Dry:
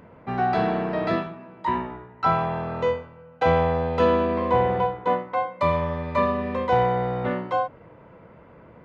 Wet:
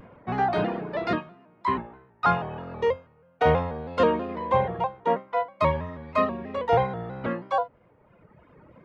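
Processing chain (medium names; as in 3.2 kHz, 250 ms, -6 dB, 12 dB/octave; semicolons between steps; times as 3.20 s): reverb removal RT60 1.9 s; vibrato with a chosen wave square 3.1 Hz, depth 100 cents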